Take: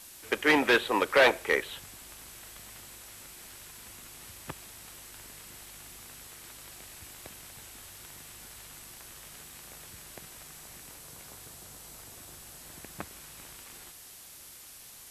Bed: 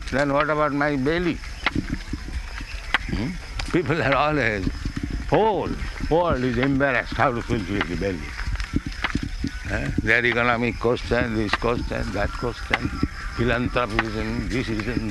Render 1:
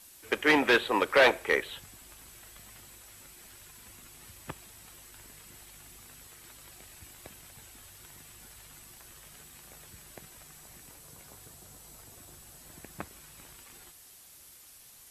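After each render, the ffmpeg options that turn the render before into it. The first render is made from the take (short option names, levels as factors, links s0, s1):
-af "afftdn=nr=6:nf=-50"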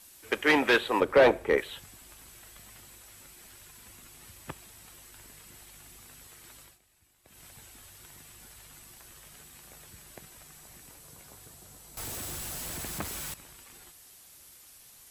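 -filter_complex "[0:a]asettb=1/sr,asplit=3[s0][s1][s2];[s0]atrim=end=1.004[s3];[s1]atrim=start=1:end=1.58,asetpts=PTS-STARTPTS,afade=t=in:d=0.004:c=qsin,afade=t=out:st=0.576:d=0.004:c=qsin,tiltshelf=f=890:g=8[s4];[s2]atrim=start=1.576[s5];[s3][s4]acrossfade=d=0.004:c1=hsin:c2=qsin[s6];[s6][s5]acrossfade=d=0.004:c1=qsin:c2=hsin,asettb=1/sr,asplit=3[s7][s8][s9];[s7]atrim=end=11.974[s10];[s8]atrim=start=11.97:end=13.34,asetpts=PTS-STARTPTS,afade=t=in:d=0.004:c=qsin,afade=t=out:st=1.366:d=0.004:c=qsin,aeval=exprs='val(0)+0.5*0.0211*sgn(val(0))':c=same[s11];[s9]atrim=start=13.336[s12];[s10][s11]acrossfade=d=0.004:c1=hsin:c2=qsin[s13];[s13][s12]acrossfade=d=0.004:c1=qsin:c2=hsin,asplit=3[s14][s15][s16];[s14]atrim=end=6.79,asetpts=PTS-STARTPTS,afade=t=out:st=6.6:d=0.19:silence=0.149624[s17];[s15]atrim=start=6.79:end=7.24,asetpts=PTS-STARTPTS,volume=0.15[s18];[s16]atrim=start=7.24,asetpts=PTS-STARTPTS,afade=t=in:d=0.19:silence=0.149624[s19];[s17][s18][s19]concat=n=3:v=0:a=1"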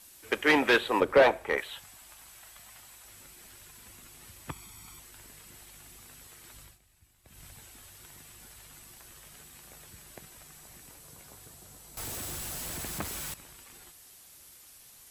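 -filter_complex "[0:a]asettb=1/sr,asplit=3[s0][s1][s2];[s0]atrim=end=1.224[s3];[s1]atrim=start=1.22:end=3.05,asetpts=PTS-STARTPTS,afade=t=in:d=0.004:c=qsin,afade=t=out:st=1.826:d=0.004:c=qsin,lowshelf=f=550:t=q:w=1.5:g=-6.5[s4];[s2]atrim=start=3.046[s5];[s3][s4]acrossfade=d=0.004:c1=hsin:c2=qsin[s6];[s6][s5]acrossfade=d=0.004:c1=qsin:c2=hsin,asettb=1/sr,asplit=3[s7][s8][s9];[s7]atrim=end=4.504[s10];[s8]atrim=start=4.5:end=5,asetpts=PTS-STARTPTS,afade=t=in:d=0.004:c=qsin,afade=t=out:st=0.496:d=0.004:c=qsin,aecho=1:1:0.9:0.72,atrim=end_sample=22050[s11];[s9]atrim=start=4.996[s12];[s10][s11]acrossfade=d=0.004:c1=hsin:c2=qsin[s13];[s13][s12]acrossfade=d=0.004:c1=qsin:c2=hsin,asplit=3[s14][s15][s16];[s14]afade=t=out:st=6.53:d=0.02[s17];[s15]asubboost=boost=2:cutoff=210,afade=t=in:st=6.53:d=0.02,afade=t=out:st=7.55:d=0.02[s18];[s16]afade=t=in:st=7.55:d=0.02[s19];[s17][s18][s19]amix=inputs=3:normalize=0"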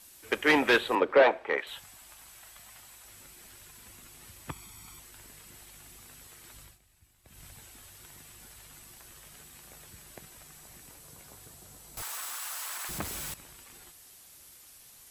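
-filter_complex "[0:a]asettb=1/sr,asplit=3[s0][s1][s2];[s0]atrim=end=0.954[s3];[s1]atrim=start=0.95:end=1.67,asetpts=PTS-STARTPTS,afade=t=in:d=0.004:c=qsin,afade=t=out:st=0.716:d=0.004:c=qsin,acrossover=split=210 4700:gain=0.178 1 0.1[s4][s5][s6];[s4][s5][s6]amix=inputs=3:normalize=0[s7];[s2]atrim=start=1.666[s8];[s3][s7]acrossfade=d=0.004:c1=hsin:c2=qsin[s9];[s9][s8]acrossfade=d=0.004:c1=qsin:c2=hsin,asettb=1/sr,asplit=3[s10][s11][s12];[s10]atrim=end=12.024[s13];[s11]atrim=start=12.02:end=12.89,asetpts=PTS-STARTPTS,afade=t=in:d=0.004:c=qsin,afade=t=out:st=0.866:d=0.004:c=qsin,highpass=f=1100:t=q:w=2.1[s14];[s12]atrim=start=12.886[s15];[s13][s14]acrossfade=d=0.004:c1=hsin:c2=qsin[s16];[s16][s15]acrossfade=d=0.004:c1=qsin:c2=hsin"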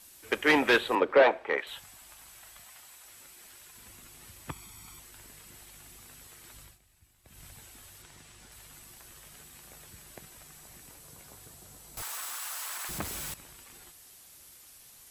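-filter_complex "[0:a]asettb=1/sr,asplit=3[s0][s1][s2];[s0]atrim=end=2.644[s3];[s1]atrim=start=2.64:end=3.75,asetpts=PTS-STARTPTS,afade=t=in:d=0.004:c=qsin,afade=t=out:st=1.106:d=0.004:c=qsin,lowshelf=f=260:g=-10[s4];[s2]atrim=start=3.746[s5];[s3][s4]acrossfade=d=0.004:c1=hsin:c2=qsin[s6];[s6][s5]acrossfade=d=0.004:c1=qsin:c2=hsin,asettb=1/sr,asplit=3[s7][s8][s9];[s7]atrim=end=8.024[s10];[s8]atrim=start=8.02:end=8.52,asetpts=PTS-STARTPTS,afade=t=in:d=0.004:c=qsin,afade=t=out:st=0.496:d=0.004:c=qsin,lowpass=8400[s11];[s9]atrim=start=8.516[s12];[s10][s11]acrossfade=d=0.004:c1=hsin:c2=qsin[s13];[s13][s12]acrossfade=d=0.004:c1=qsin:c2=hsin"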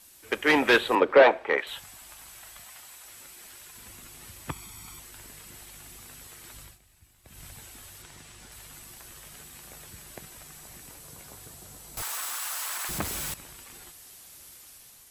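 -af "dynaudnorm=f=250:g=5:m=1.68"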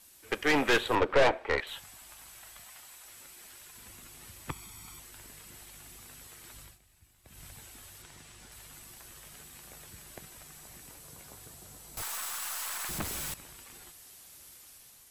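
-af "aeval=exprs='(tanh(8.91*val(0)+0.65)-tanh(0.65))/8.91':c=same"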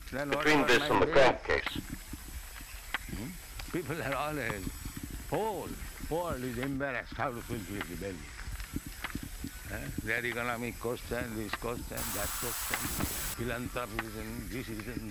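-filter_complex "[1:a]volume=0.2[s0];[0:a][s0]amix=inputs=2:normalize=0"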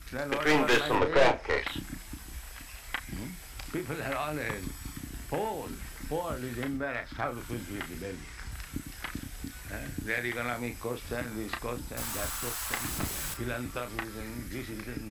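-filter_complex "[0:a]asplit=2[s0][s1];[s1]adelay=33,volume=0.398[s2];[s0][s2]amix=inputs=2:normalize=0"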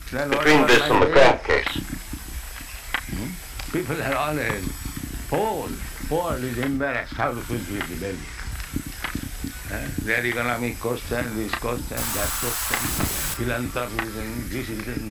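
-af "volume=2.82,alimiter=limit=0.708:level=0:latency=1"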